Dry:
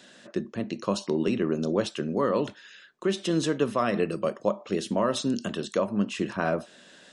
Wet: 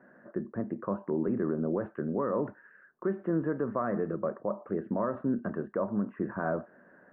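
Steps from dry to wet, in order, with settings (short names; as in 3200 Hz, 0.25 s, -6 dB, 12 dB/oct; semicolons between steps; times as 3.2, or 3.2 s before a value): steep low-pass 1700 Hz 48 dB/oct; limiter -18.5 dBFS, peak gain reduction 7 dB; gain -2 dB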